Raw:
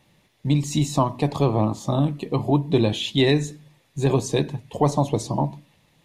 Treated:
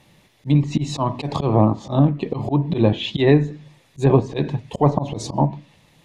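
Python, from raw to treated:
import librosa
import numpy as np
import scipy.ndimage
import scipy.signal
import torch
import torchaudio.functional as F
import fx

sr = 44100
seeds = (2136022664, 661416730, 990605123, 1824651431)

y = fx.auto_swell(x, sr, attack_ms=118.0)
y = fx.env_lowpass_down(y, sr, base_hz=1700.0, full_db=-19.5)
y = y * 10.0 ** (6.0 / 20.0)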